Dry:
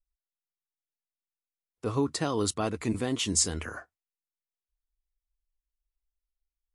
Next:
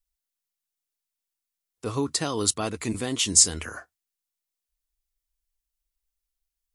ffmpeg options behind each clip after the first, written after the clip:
ffmpeg -i in.wav -af "highshelf=frequency=3000:gain=10" out.wav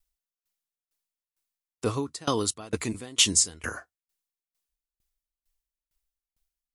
ffmpeg -i in.wav -af "aeval=exprs='val(0)*pow(10,-26*if(lt(mod(2.2*n/s,1),2*abs(2.2)/1000),1-mod(2.2*n/s,1)/(2*abs(2.2)/1000),(mod(2.2*n/s,1)-2*abs(2.2)/1000)/(1-2*abs(2.2)/1000))/20)':channel_layout=same,volume=7dB" out.wav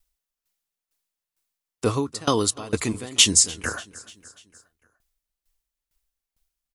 ffmpeg -i in.wav -af "aecho=1:1:295|590|885|1180:0.0891|0.049|0.027|0.0148,volume=5dB" out.wav

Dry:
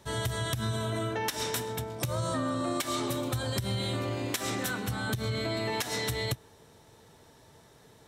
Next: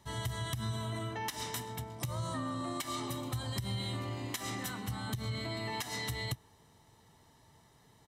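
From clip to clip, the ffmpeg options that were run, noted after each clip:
ffmpeg -i in.wav -af "aecho=1:1:1:0.46,volume=-7dB" out.wav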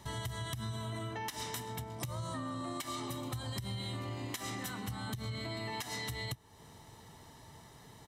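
ffmpeg -i in.wav -af "acompressor=threshold=-50dB:ratio=2.5,volume=8dB" out.wav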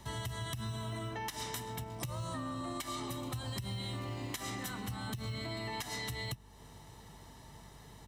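ffmpeg -i in.wav -filter_complex "[0:a]aeval=exprs='val(0)+0.00141*(sin(2*PI*50*n/s)+sin(2*PI*2*50*n/s)/2+sin(2*PI*3*50*n/s)/3+sin(2*PI*4*50*n/s)/4+sin(2*PI*5*50*n/s)/5)':channel_layout=same,acrossover=split=160[link_01][link_02];[link_01]acrusher=samples=16:mix=1:aa=0.000001[link_03];[link_03][link_02]amix=inputs=2:normalize=0" out.wav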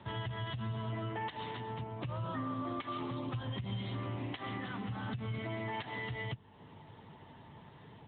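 ffmpeg -i in.wav -af "volume=2.5dB" -ar 8000 -c:a libopencore_amrnb -b:a 10200 out.amr

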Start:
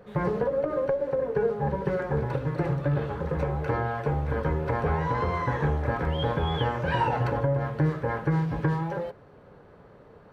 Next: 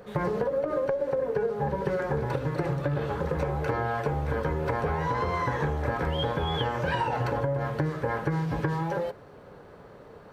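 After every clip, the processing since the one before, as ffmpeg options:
ffmpeg -i in.wav -af "bass=frequency=250:gain=-3,treble=frequency=4000:gain=6,acompressor=threshold=-28dB:ratio=6,volume=4dB" out.wav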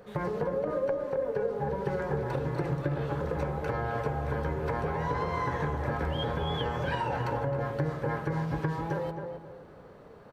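ffmpeg -i in.wav -filter_complex "[0:a]asplit=2[link_01][link_02];[link_02]adelay=264,lowpass=frequency=1100:poles=1,volume=-4dB,asplit=2[link_03][link_04];[link_04]adelay=264,lowpass=frequency=1100:poles=1,volume=0.34,asplit=2[link_05][link_06];[link_06]adelay=264,lowpass=frequency=1100:poles=1,volume=0.34,asplit=2[link_07][link_08];[link_08]adelay=264,lowpass=frequency=1100:poles=1,volume=0.34[link_09];[link_01][link_03][link_05][link_07][link_09]amix=inputs=5:normalize=0,volume=-4dB" out.wav

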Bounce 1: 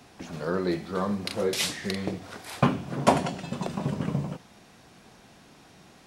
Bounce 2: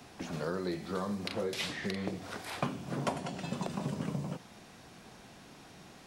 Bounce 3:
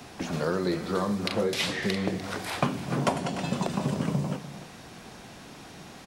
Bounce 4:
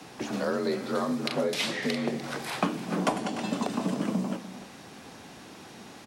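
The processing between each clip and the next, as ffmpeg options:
ffmpeg -i in.wav -filter_complex "[0:a]acrossover=split=100|4200[link_01][link_02][link_03];[link_01]acompressor=threshold=-56dB:ratio=4[link_04];[link_02]acompressor=threshold=-33dB:ratio=4[link_05];[link_03]acompressor=threshold=-50dB:ratio=4[link_06];[link_04][link_05][link_06]amix=inputs=3:normalize=0" out.wav
ffmpeg -i in.wav -af "aecho=1:1:297:0.224,volume=7.5dB" out.wav
ffmpeg -i in.wav -af "afreqshift=44,volume=-1dB" out.wav

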